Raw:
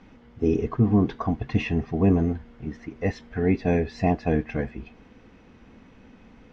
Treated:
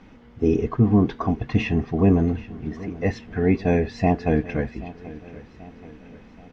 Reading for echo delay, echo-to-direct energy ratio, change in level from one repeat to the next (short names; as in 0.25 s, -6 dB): 0.782 s, -17.0 dB, -6.0 dB